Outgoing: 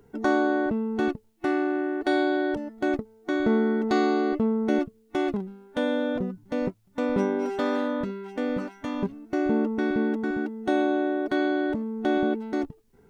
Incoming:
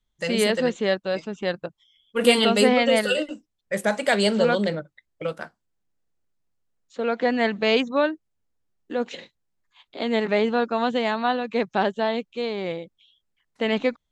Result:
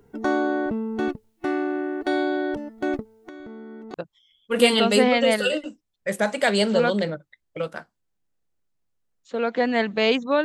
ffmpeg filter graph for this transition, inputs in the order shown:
-filter_complex "[0:a]asettb=1/sr,asplit=3[s0][s1][s2];[s0]atrim=end=3.194[s3];[s1]atrim=start=3.19:end=3.94,asetpts=PTS-STARTPTS,afade=t=in:d=0.004:c=qsin,afade=t=out:st=0.746:d=0.004:c=qsin,acompressor=threshold=0.0158:ratio=16:attack=3.2:release=140:knee=1:detection=peak[s4];[s2]atrim=start=3.936[s5];[s3][s4]acrossfade=d=0.004:c1=hsin:c2=qsin[s6];[s6][s5]acrossfade=d=0.004:c1=qsin:c2=hsin,apad=whole_dur=10.44,atrim=end=10.44,atrim=end=3.942[s7];[1:a]atrim=start=1.588:end=8.09[s8];[s7][s8]acrossfade=d=0.004:c1=hsin:c2=hsin"

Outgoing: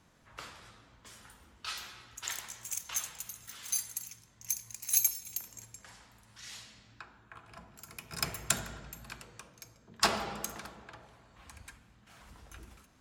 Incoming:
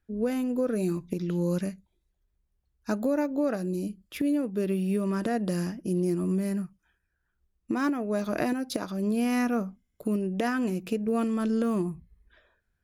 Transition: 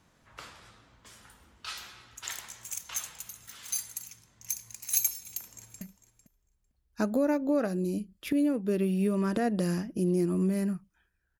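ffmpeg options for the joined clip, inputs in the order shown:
-filter_complex "[0:a]apad=whole_dur=11.39,atrim=end=11.39,atrim=end=5.812[s0];[1:a]atrim=start=1.698:end=7.28[s1];[s0][s1]acrossfade=d=0.004:c1=hsin:c2=hsin,asplit=2[s2][s3];[s3]afade=t=in:st=5.18:d=0.01,afade=t=out:st=5.81:d=0.01,aecho=0:1:450|900:0.199526|0.0199526[s4];[s2][s4]amix=inputs=2:normalize=0"

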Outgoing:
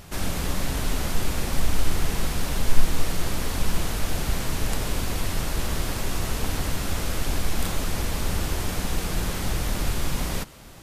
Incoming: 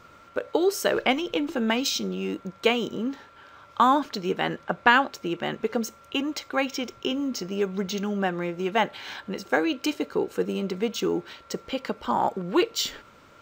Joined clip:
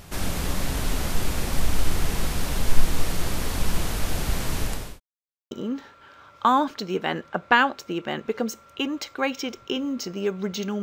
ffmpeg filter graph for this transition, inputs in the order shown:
-filter_complex "[0:a]apad=whole_dur=10.82,atrim=end=10.82,asplit=2[s0][s1];[s0]atrim=end=5,asetpts=PTS-STARTPTS,afade=t=out:st=4.6:d=0.4[s2];[s1]atrim=start=5:end=5.51,asetpts=PTS-STARTPTS,volume=0[s3];[1:a]atrim=start=2.86:end=8.17,asetpts=PTS-STARTPTS,afade=t=in:d=0.004:c=hsin[s4];[s2][s3][s4]concat=n=3:v=0:a=1"

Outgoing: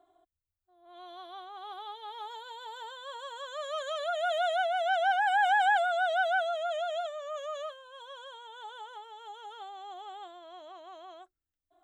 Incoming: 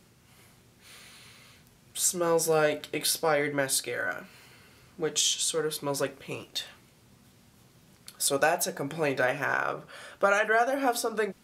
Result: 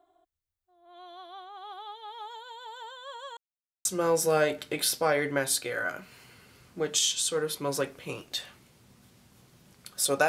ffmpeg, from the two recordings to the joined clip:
-filter_complex "[0:a]apad=whole_dur=10.28,atrim=end=10.28,asplit=2[s0][s1];[s0]atrim=end=3.37,asetpts=PTS-STARTPTS,afade=t=out:st=3.366:d=0.004:c=hsin[s2];[s1]atrim=start=3.37:end=3.85,asetpts=PTS-STARTPTS,volume=0[s3];[1:a]atrim=start=2.07:end=8.5,asetpts=PTS-STARTPTS,afade=t=in:d=0.004:c=hsin[s4];[s2][s3][s4]concat=n=3:v=0:a=1"

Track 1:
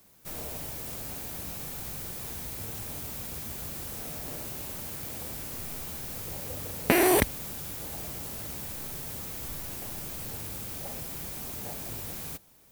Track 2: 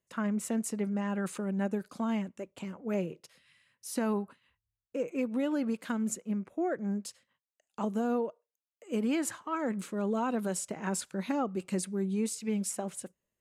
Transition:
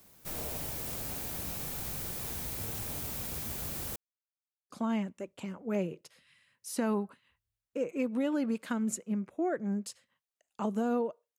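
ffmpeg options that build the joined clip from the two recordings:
-filter_complex "[0:a]apad=whole_dur=11.38,atrim=end=11.38,asplit=2[s0][s1];[s0]atrim=end=3.96,asetpts=PTS-STARTPTS,afade=t=out:st=3.956:d=0.004:c=hsin[s2];[s1]atrim=start=3.96:end=4.7,asetpts=PTS-STARTPTS,volume=0[s3];[1:a]atrim=start=1.89:end=8.57,asetpts=PTS-STARTPTS,afade=t=in:d=0.004:c=hsin[s4];[s2][s3][s4]concat=n=3:v=0:a=1"

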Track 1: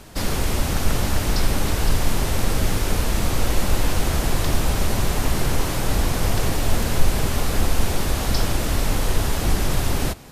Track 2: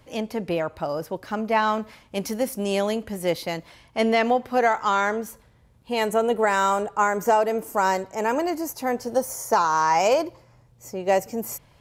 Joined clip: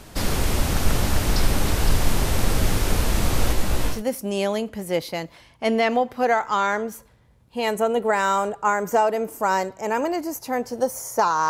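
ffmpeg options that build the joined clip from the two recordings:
-filter_complex "[0:a]asplit=3[s0][s1][s2];[s0]afade=t=out:st=3.52:d=0.02[s3];[s1]flanger=delay=16:depth=3.3:speed=0.83,afade=t=in:st=3.52:d=0.02,afade=t=out:st=4.03:d=0.02[s4];[s2]afade=t=in:st=4.03:d=0.02[s5];[s3][s4][s5]amix=inputs=3:normalize=0,apad=whole_dur=11.49,atrim=end=11.49,atrim=end=4.03,asetpts=PTS-STARTPTS[s6];[1:a]atrim=start=2.21:end=9.83,asetpts=PTS-STARTPTS[s7];[s6][s7]acrossfade=d=0.16:c1=tri:c2=tri"

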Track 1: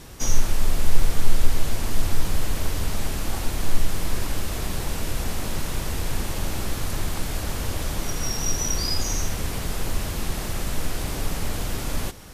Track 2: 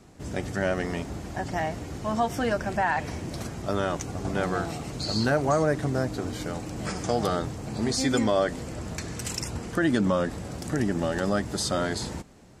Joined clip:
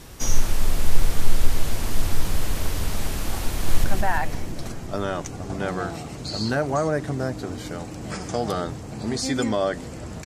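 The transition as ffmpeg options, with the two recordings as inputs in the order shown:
-filter_complex "[0:a]apad=whole_dur=10.25,atrim=end=10.25,atrim=end=3.842[s0];[1:a]atrim=start=2.588:end=9[s1];[s0][s1]acrossfade=d=0.004:c1=hsin:c2=hsin,asplit=2[s2][s3];[s3]afade=t=in:st=3.5:d=0.01,afade=t=out:st=3.84:d=0.01,aecho=0:1:170|340|510|680|850|1020|1190|1360|1530|1700:0.668344|0.434424|0.282375|0.183544|0.119304|0.0775473|0.0504058|0.0327637|0.0212964|0.0138427[s4];[s2][s4]amix=inputs=2:normalize=0"

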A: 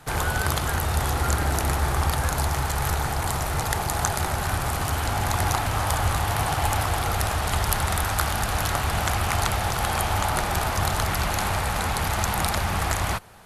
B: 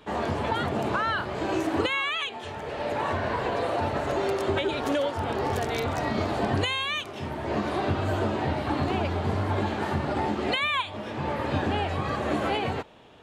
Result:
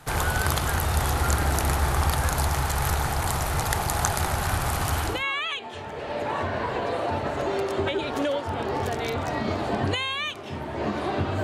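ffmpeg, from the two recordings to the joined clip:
-filter_complex "[0:a]apad=whole_dur=11.43,atrim=end=11.43,atrim=end=5.24,asetpts=PTS-STARTPTS[s0];[1:a]atrim=start=1.7:end=8.13,asetpts=PTS-STARTPTS[s1];[s0][s1]acrossfade=d=0.24:c1=tri:c2=tri"

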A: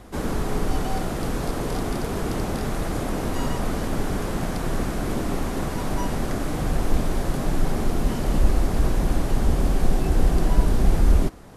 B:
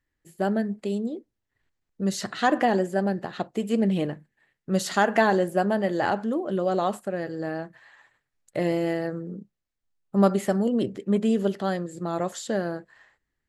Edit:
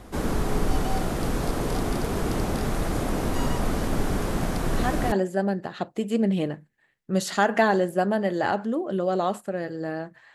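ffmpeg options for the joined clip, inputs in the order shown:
-filter_complex "[1:a]asplit=2[s0][s1];[0:a]apad=whole_dur=10.34,atrim=end=10.34,atrim=end=5.122[s2];[s1]atrim=start=2.708:end=7.93[s3];[s0]atrim=start=2.3:end=2.71,asetpts=PTS-STARTPTS,volume=0.447,afade=t=in:d=0.004:c=hsin,afade=t=out:st=0.406:d=0.004:c=hsin,adelay=4710[s4];[s2][s3]acrossfade=d=0.004:c1=hsin:c2=hsin[s5];[s5][s4]amix=inputs=2:normalize=0"

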